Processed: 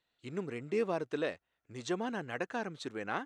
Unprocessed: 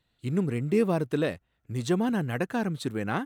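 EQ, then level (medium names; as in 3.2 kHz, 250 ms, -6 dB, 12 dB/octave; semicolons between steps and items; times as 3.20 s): resonant low-pass 6.5 kHz, resonance Q 2.4; tone controls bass -14 dB, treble -14 dB; treble shelf 4.9 kHz +8 dB; -5.0 dB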